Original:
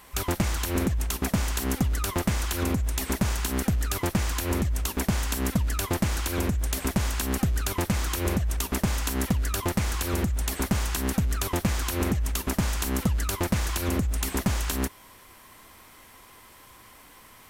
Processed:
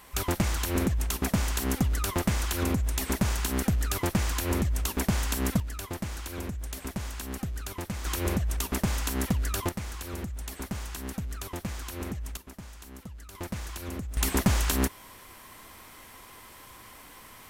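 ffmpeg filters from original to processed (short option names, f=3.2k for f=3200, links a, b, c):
-af "asetnsamples=n=441:p=0,asendcmd='5.6 volume volume -9dB;8.05 volume volume -2dB;9.69 volume volume -9.5dB;12.37 volume volume -18.5dB;13.35 volume volume -10dB;14.17 volume volume 2dB',volume=-1dB"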